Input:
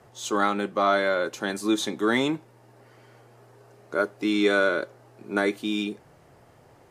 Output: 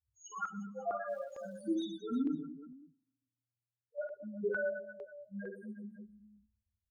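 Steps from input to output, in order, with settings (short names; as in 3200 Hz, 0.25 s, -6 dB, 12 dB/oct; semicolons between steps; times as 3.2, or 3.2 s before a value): per-bin expansion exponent 3; 4.19–5.67 thirty-one-band EQ 160 Hz +9 dB, 315 Hz -11 dB, 630 Hz +7 dB; loudest bins only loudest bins 1; 1.07–1.61 crackle 490/s -61 dBFS; in parallel at -0.5 dB: level quantiser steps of 18 dB; on the sum: reverse bouncing-ball echo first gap 50 ms, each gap 1.4×, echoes 5; on a send at -23 dB: reverb RT60 1.0 s, pre-delay 3 ms; on the sum: stepped notch 2.2 Hz 340–3000 Hz; gain -4 dB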